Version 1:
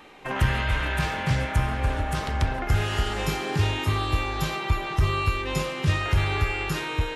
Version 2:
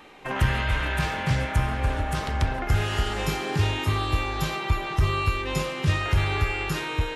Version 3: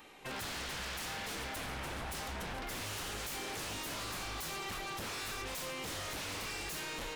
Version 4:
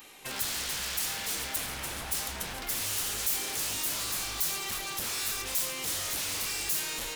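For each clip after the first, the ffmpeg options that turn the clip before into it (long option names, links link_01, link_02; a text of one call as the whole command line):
ffmpeg -i in.wav -af anull out.wav
ffmpeg -i in.wav -af "crystalizer=i=2:c=0,aeval=exprs='0.0422*(abs(mod(val(0)/0.0422+3,4)-2)-1)':channel_layout=same,volume=-8.5dB" out.wav
ffmpeg -i in.wav -af "crystalizer=i=3.5:c=0" out.wav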